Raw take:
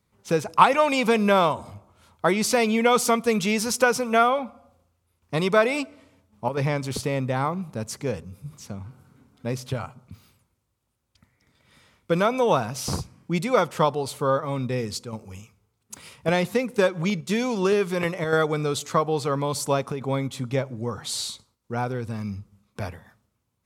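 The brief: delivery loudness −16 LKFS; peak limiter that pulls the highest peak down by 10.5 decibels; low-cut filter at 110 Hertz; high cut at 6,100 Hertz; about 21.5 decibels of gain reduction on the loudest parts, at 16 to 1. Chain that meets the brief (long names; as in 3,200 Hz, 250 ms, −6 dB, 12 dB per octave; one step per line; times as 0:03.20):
high-pass filter 110 Hz
low-pass filter 6,100 Hz
downward compressor 16 to 1, threshold −31 dBFS
level +22 dB
brickwall limiter −4.5 dBFS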